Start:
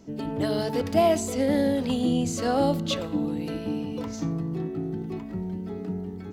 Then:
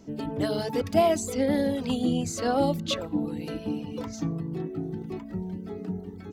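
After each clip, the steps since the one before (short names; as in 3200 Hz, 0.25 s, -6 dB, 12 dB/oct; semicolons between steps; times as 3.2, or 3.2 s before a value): reverb removal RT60 0.66 s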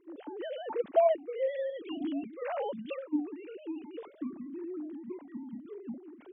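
sine-wave speech; gain -6.5 dB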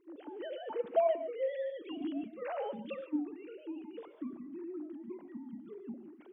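non-linear reverb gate 0.17 s rising, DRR 11 dB; gain -3.5 dB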